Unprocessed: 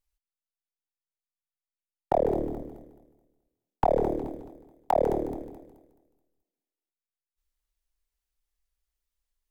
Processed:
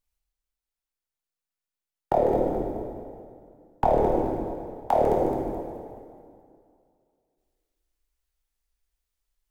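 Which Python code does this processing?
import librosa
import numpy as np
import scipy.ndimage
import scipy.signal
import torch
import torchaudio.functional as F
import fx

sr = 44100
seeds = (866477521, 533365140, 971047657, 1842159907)

y = fx.rev_plate(x, sr, seeds[0], rt60_s=2.3, hf_ratio=0.8, predelay_ms=0, drr_db=-0.5)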